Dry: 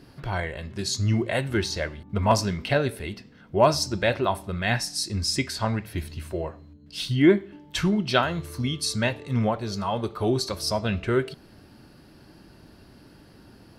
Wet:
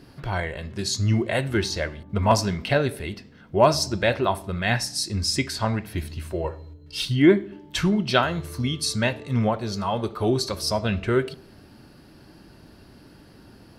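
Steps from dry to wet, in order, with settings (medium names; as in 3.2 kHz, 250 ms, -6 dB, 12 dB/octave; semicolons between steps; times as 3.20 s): 6.44–7.05 s: comb 2.2 ms, depth 93%; filtered feedback delay 74 ms, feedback 53%, low-pass 1.2 kHz, level -20 dB; trim +1.5 dB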